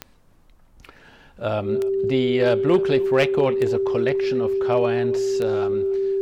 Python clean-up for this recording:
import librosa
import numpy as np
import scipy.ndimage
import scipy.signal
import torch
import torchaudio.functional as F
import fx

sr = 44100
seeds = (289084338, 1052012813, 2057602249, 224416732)

y = fx.fix_declip(x, sr, threshold_db=-10.5)
y = fx.fix_declick_ar(y, sr, threshold=10.0)
y = fx.notch(y, sr, hz=390.0, q=30.0)
y = fx.fix_echo_inverse(y, sr, delay_ms=286, level_db=-22.0)